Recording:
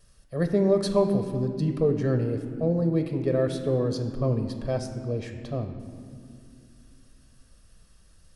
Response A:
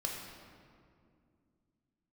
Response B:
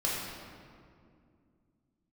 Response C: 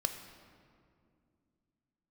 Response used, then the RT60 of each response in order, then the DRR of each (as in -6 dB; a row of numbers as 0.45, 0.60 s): C; 2.3, 2.3, 2.3 s; -1.5, -6.5, 6.0 dB